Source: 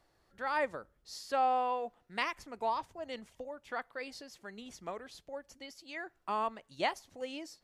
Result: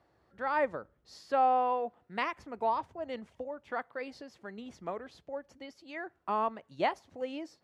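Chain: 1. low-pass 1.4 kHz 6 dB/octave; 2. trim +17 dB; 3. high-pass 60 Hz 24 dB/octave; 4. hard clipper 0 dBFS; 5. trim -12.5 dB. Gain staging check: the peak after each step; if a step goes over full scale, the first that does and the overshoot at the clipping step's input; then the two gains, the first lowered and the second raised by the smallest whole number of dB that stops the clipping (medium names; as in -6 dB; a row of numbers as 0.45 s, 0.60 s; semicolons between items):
-21.5 dBFS, -4.5 dBFS, -4.5 dBFS, -4.5 dBFS, -17.0 dBFS; nothing clips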